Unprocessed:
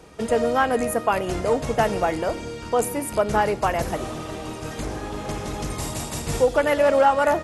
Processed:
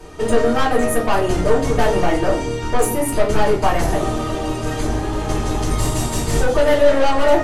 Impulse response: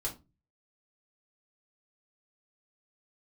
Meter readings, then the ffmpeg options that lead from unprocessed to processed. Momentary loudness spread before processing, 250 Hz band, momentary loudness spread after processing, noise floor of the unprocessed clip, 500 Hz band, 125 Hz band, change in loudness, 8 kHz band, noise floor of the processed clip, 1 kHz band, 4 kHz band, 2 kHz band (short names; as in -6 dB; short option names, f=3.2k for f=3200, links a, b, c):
13 LU, +7.0 dB, 7 LU, -35 dBFS, +4.5 dB, +8.5 dB, +4.5 dB, +5.5 dB, -24 dBFS, +2.0 dB, +6.5 dB, +3.0 dB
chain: -filter_complex "[0:a]aeval=exprs='(tanh(11.2*val(0)+0.2)-tanh(0.2))/11.2':c=same[a];[1:a]atrim=start_sample=2205,asetrate=40572,aresample=44100[b];[a][b]afir=irnorm=-1:irlink=0,volume=5.5dB"